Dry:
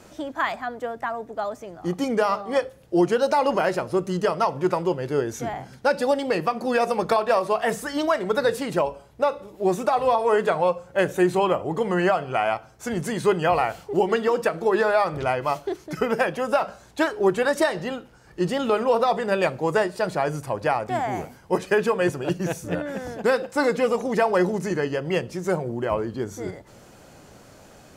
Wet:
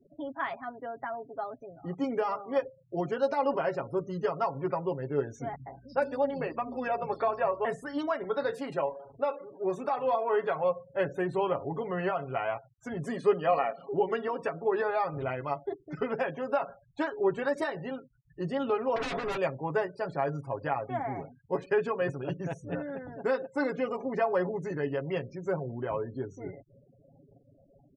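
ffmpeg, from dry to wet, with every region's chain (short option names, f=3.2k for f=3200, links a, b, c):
-filter_complex "[0:a]asettb=1/sr,asplit=3[a][b][c];[a]atrim=end=5.554[d];[b]atrim=start=5.55:end=7.65,asetpts=PTS-STARTPTS,afade=t=in:d=0.004:c=qsin,afade=t=out:st=2.096:d=0.004:c=qsin,acrossover=split=230|4400[e][f][g];[g]adelay=30[h];[f]adelay=110[i];[e][i][h]amix=inputs=3:normalize=0,atrim=end_sample=92610,aeval=exprs='val(0)+0.00447*(sin(2*PI*60*n/s)+sin(2*PI*2*60*n/s)/2+sin(2*PI*3*60*n/s)/3+sin(2*PI*4*60*n/s)/4+sin(2*PI*5*60*n/s)/5)':c=same,adynamicequalizer=threshold=0.01:dfrequency=4300:dqfactor=0.7:tfrequency=4300:tqfactor=0.7:attack=5:release=100:ratio=0.375:range=2:mode=cutabove:tftype=highshelf[j];[c]atrim=start=7.646[k];[d][j]acrossfade=d=0.004:c1=hsin:c2=qsin[l];[l][k]acrossfade=d=0.004:c1=qsin:c2=hsin,asettb=1/sr,asplit=3[m][n][o];[m]atrim=end=8.244[p];[n]atrim=start=8.24:end=10.64,asetpts=PTS-STARTPTS,afade=t=in:d=0.004:c=qsin,afade=t=out:st=2.396:d=0.004:c=qsin,aeval=exprs='val(0)+0.5*0.0133*sgn(val(0))':c=same,lowshelf=f=150:g=-12,asplit=2[q][r];[r]adelay=27,volume=-12dB[s];[q][s]amix=inputs=2:normalize=0,atrim=end_sample=105840[t];[o]atrim=start=10.636[u];[p][t]acrossfade=d=0.004:c1=hsin:c2=qsin[v];[v][u]acrossfade=d=0.004:c1=qsin:c2=hsin,asettb=1/sr,asplit=3[w][x][y];[w]atrim=end=13.044[z];[x]atrim=start=13.04:end=13.92,asetpts=PTS-STARTPTS,afade=t=in:d=0.004:c=qsin,afade=t=out:st=0.876:d=0.004:c=qsin,lowshelf=f=160:t=q:w=3:g=-10.5,aecho=1:1:1.7:0.44,atrim=end_sample=38808,acompressor=mode=upward:threshold=-29dB:ratio=2.5:attack=3.2:release=140:knee=2.83:detection=peak[aa];[y]atrim=start=13.916[ab];[z][aa]acrossfade=d=0.004:c1=hsin:c2=qsin[ac];[ac][ab]acrossfade=d=0.004:c1=qsin:c2=hsin,asettb=1/sr,asplit=3[ad][ae][af];[ad]atrim=end=18.964[ag];[ae]atrim=start=18.96:end=19.37,asetpts=PTS-STARTPTS,afade=t=in:d=0.004:c=qsin,afade=t=out:st=0.406:d=0.004:c=qsin,highpass=75,acontrast=72,aeval=exprs='0.112*(abs(mod(val(0)/0.112+3,4)-2)-1)':c=same[ah];[af]atrim=start=19.366[ai];[ag][ah]acrossfade=d=0.004:c1=hsin:c2=qsin[aj];[aj][ai]acrossfade=d=0.004:c1=qsin:c2=hsin,afftfilt=real='re*gte(hypot(re,im),0.0141)':imag='im*gte(hypot(re,im),0.0141)':win_size=1024:overlap=0.75,lowpass=f=2.1k:p=1,aecho=1:1:7.3:0.69,volume=-9dB"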